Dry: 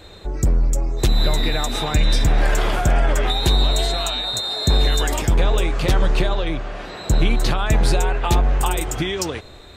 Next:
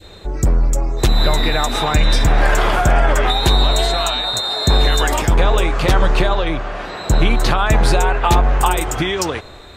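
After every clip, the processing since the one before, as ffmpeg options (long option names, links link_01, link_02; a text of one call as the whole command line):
ffmpeg -i in.wav -af "adynamicequalizer=threshold=0.0126:dfrequency=1100:dqfactor=0.72:tfrequency=1100:tqfactor=0.72:attack=5:release=100:ratio=0.375:range=3:mode=boostabove:tftype=bell,volume=2.5dB" out.wav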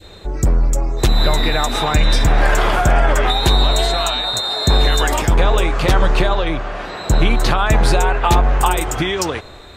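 ffmpeg -i in.wav -af anull out.wav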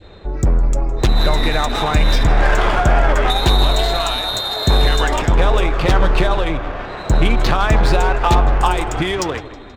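ffmpeg -i in.wav -filter_complex "[0:a]asplit=6[link_01][link_02][link_03][link_04][link_05][link_06];[link_02]adelay=160,afreqshift=-33,volume=-14.5dB[link_07];[link_03]adelay=320,afreqshift=-66,volume=-19.9dB[link_08];[link_04]adelay=480,afreqshift=-99,volume=-25.2dB[link_09];[link_05]adelay=640,afreqshift=-132,volume=-30.6dB[link_10];[link_06]adelay=800,afreqshift=-165,volume=-35.9dB[link_11];[link_01][link_07][link_08][link_09][link_10][link_11]amix=inputs=6:normalize=0,adynamicsmooth=sensitivity=1.5:basefreq=3000" out.wav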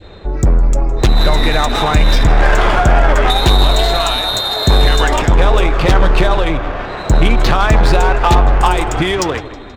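ffmpeg -i in.wav -af "asoftclip=type=tanh:threshold=-5dB,volume=4.5dB" out.wav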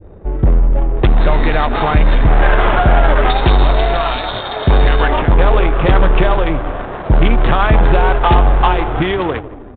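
ffmpeg -i in.wav -af "adynamicsmooth=sensitivity=1:basefreq=550,aresample=8000,aresample=44100" out.wav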